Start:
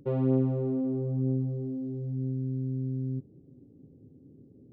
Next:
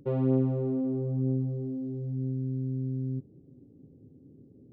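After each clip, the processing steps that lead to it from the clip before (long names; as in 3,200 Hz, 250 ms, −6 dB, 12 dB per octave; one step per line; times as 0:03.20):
no processing that can be heard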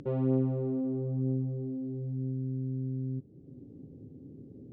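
in parallel at +0.5 dB: upward compression, threshold −30 dBFS
on the sum: high-frequency loss of the air 77 metres
level −8.5 dB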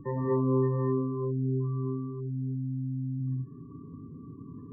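decimation without filtering 31×
gate on every frequency bin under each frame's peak −15 dB strong
reverb whose tail is shaped and stops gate 270 ms rising, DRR −3 dB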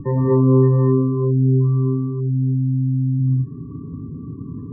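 spectral tilt −2.5 dB per octave
level +7 dB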